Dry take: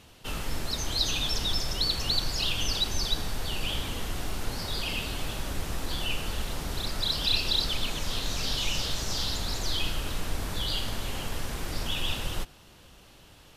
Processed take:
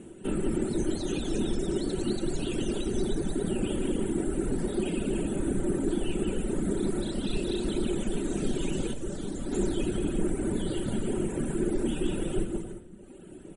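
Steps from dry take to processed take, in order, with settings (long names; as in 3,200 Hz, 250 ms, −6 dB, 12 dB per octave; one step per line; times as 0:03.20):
low-shelf EQ 140 Hz −9 dB
notch filter 1,100 Hz, Q 6.3
bouncing-ball delay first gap 180 ms, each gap 0.6×, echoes 5
in parallel at −2.5 dB: downward compressor 5 to 1, threshold −39 dBFS, peak gain reduction 16.5 dB
0:08.93–0:09.52: on the sum: tuned comb filter 580 Hz, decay 0.16 s, harmonics all, mix 40%
reverb reduction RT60 1.4 s
drawn EQ curve 110 Hz 0 dB, 350 Hz +14 dB, 500 Hz 0 dB, 780 Hz −9 dB, 1,500 Hz −9 dB, 3,500 Hz −19 dB, 5,000 Hz −30 dB, 7,800 Hz −3 dB, 14,000 Hz −1 dB
rectangular room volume 2,200 cubic metres, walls furnished, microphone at 1.1 metres
level +3.5 dB
MP3 40 kbit/s 48,000 Hz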